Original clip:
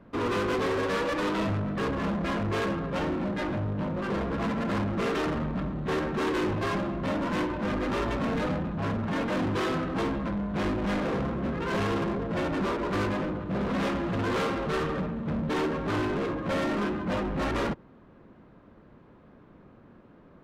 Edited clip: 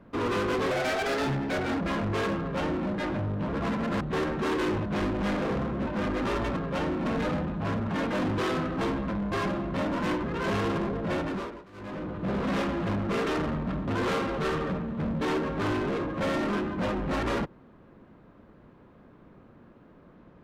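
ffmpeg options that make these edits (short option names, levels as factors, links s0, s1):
-filter_complex "[0:a]asplit=15[s0][s1][s2][s3][s4][s5][s6][s7][s8][s9][s10][s11][s12][s13][s14];[s0]atrim=end=0.714[s15];[s1]atrim=start=0.71:end=2.19,asetpts=PTS-STARTPTS,asetrate=59535,aresample=44100[s16];[s2]atrim=start=2.186:end=3.872[s17];[s3]atrim=start=4.258:end=4.782[s18];[s4]atrim=start=5.758:end=6.612[s19];[s5]atrim=start=10.488:end=11.502[s20];[s6]atrim=start=7.528:end=8.232[s21];[s7]atrim=start=2.768:end=3.262[s22];[s8]atrim=start=8.228:end=10.492[s23];[s9]atrim=start=6.608:end=7.532[s24];[s10]atrim=start=11.498:end=12.92,asetpts=PTS-STARTPTS,afade=t=out:st=0.922:d=0.5:silence=0.0630957[s25];[s11]atrim=start=12.92:end=12.99,asetpts=PTS-STARTPTS,volume=0.0631[s26];[s12]atrim=start=12.99:end=14.162,asetpts=PTS-STARTPTS,afade=t=in:d=0.5:silence=0.0630957[s27];[s13]atrim=start=4.778:end=5.762[s28];[s14]atrim=start=14.158[s29];[s15][s16]acrossfade=d=0.004:c1=hsin:c2=hsin[s30];[s30][s17]acrossfade=d=0.004:c1=hsin:c2=hsin[s31];[s31][s18]acrossfade=d=0.004:c1=hsin:c2=hsin[s32];[s32][s19]acrossfade=d=0.004:c1=hsin:c2=hsin[s33];[s33][s20]acrossfade=d=0.004:c1=hsin:c2=hsin[s34];[s34][s21]acrossfade=d=0.004:c1=hsin:c2=hsin[s35];[s35][s22]acrossfade=d=0.004:c1=hsin:c2=hsin[s36];[s36][s23]acrossfade=d=0.004:c1=hsin:c2=hsin[s37];[s37][s24]acrossfade=d=0.004:c1=hsin:c2=hsin[s38];[s25][s26][s27]concat=n=3:v=0:a=1[s39];[s38][s39]acrossfade=d=0.004:c1=hsin:c2=hsin[s40];[s40][s28]acrossfade=d=0.004:c1=hsin:c2=hsin[s41];[s41][s29]acrossfade=d=0.004:c1=hsin:c2=hsin"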